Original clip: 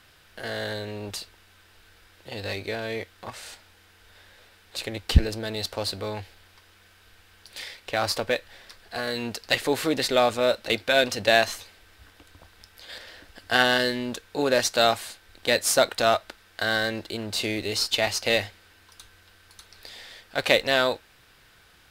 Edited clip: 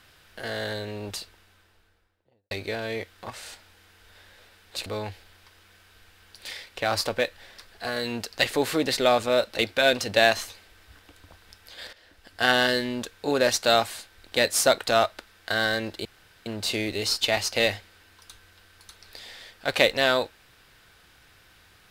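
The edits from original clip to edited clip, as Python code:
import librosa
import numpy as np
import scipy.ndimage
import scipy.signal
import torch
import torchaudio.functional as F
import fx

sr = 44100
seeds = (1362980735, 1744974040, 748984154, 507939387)

y = fx.studio_fade_out(x, sr, start_s=1.12, length_s=1.39)
y = fx.edit(y, sr, fx.cut(start_s=4.86, length_s=1.11),
    fx.fade_in_from(start_s=13.04, length_s=0.64, floor_db=-13.5),
    fx.insert_room_tone(at_s=17.16, length_s=0.41), tone=tone)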